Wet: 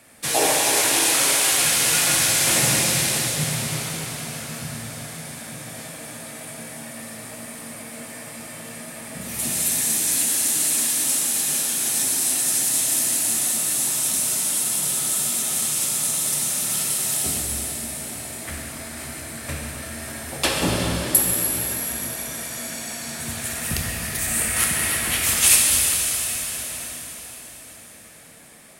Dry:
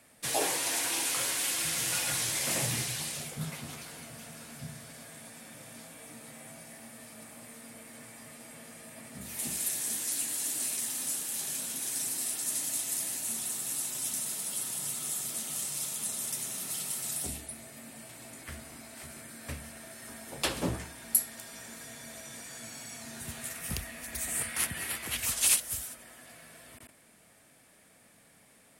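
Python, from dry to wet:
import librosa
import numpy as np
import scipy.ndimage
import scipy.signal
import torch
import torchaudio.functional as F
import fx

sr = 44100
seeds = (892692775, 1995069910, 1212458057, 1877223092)

y = fx.rev_plate(x, sr, seeds[0], rt60_s=4.6, hf_ratio=1.0, predelay_ms=0, drr_db=-2.5)
y = y * 10.0 ** (8.0 / 20.0)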